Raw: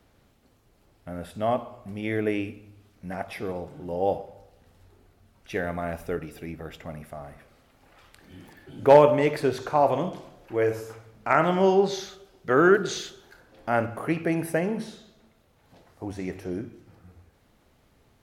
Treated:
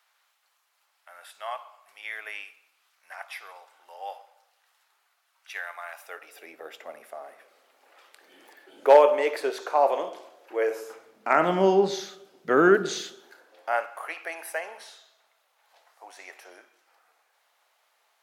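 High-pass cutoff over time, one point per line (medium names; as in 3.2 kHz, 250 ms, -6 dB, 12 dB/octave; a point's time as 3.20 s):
high-pass 24 dB/octave
5.91 s 940 Hz
6.63 s 410 Hz
10.70 s 410 Hz
11.57 s 180 Hz
13.06 s 180 Hz
13.86 s 710 Hz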